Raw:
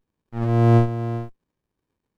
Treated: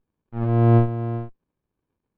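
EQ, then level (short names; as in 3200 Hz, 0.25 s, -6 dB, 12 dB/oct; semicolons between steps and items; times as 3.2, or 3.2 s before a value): air absorption 340 m; notch 1900 Hz, Q 14; 0.0 dB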